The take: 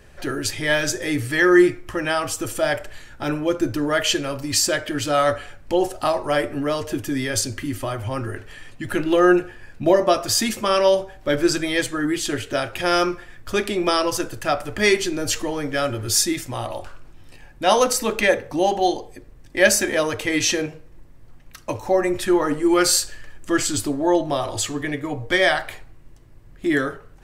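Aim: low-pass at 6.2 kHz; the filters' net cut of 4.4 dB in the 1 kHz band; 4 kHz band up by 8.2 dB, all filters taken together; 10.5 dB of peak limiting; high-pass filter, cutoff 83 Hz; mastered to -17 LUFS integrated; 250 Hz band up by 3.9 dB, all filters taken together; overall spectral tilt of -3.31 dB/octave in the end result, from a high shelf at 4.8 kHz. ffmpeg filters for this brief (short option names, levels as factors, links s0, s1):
-af "highpass=83,lowpass=6200,equalizer=f=250:t=o:g=7,equalizer=f=1000:t=o:g=-8,equalizer=f=4000:t=o:g=8.5,highshelf=f=4800:g=7,volume=1.58,alimiter=limit=0.501:level=0:latency=1"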